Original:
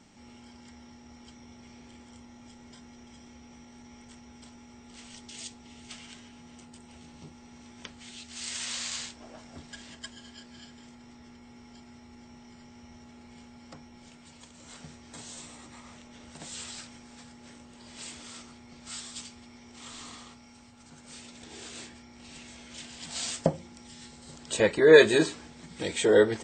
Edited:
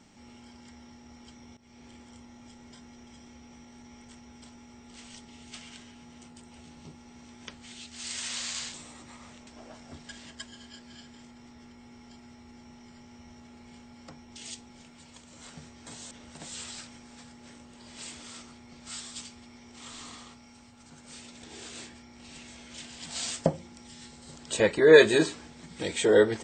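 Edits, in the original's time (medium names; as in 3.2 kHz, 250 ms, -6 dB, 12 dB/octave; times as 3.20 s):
1.57–1.86 s: fade in, from -16 dB
5.25–5.62 s: move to 13.96 s
15.38–16.11 s: move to 9.11 s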